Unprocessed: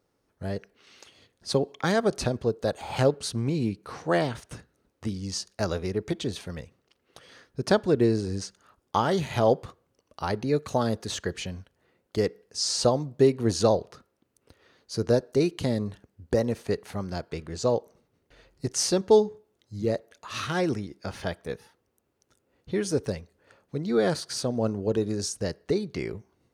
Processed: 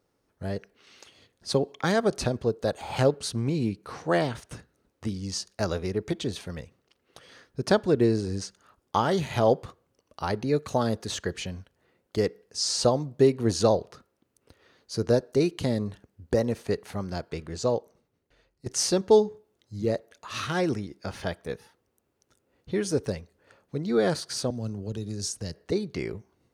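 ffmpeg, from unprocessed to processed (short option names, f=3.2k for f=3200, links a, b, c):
-filter_complex "[0:a]asettb=1/sr,asplit=3[a][b][c];[a]atrim=end=24.504[d];[b]atrim=start=24.5:end=25.72,asetpts=PTS-STARTPTS,afade=t=in:d=0.004:c=qsin,afade=t=out:st=1.216:d=0.004:c=qsin,acrossover=split=190|3000[e][f][g];[f]acompressor=threshold=-40dB:ratio=4:attack=3.2:release=140:knee=2.83:detection=peak[h];[e][h][g]amix=inputs=3:normalize=0[i];[c]atrim=start=25.716[j];[d][i]acrossfade=d=0.004:c1=hsin:c2=qsin[k];[k][j]acrossfade=d=0.004:c1=qsin:c2=hsin,asplit=2[l][m];[l]atrim=end=18.66,asetpts=PTS-STARTPTS,afade=t=out:st=17.52:d=1.14:silence=0.177828[n];[m]atrim=start=18.66,asetpts=PTS-STARTPTS,afade=t=in:d=0.004:c=hsin:silence=0.177828[o];[n][o]concat=n=2:v=0:a=1"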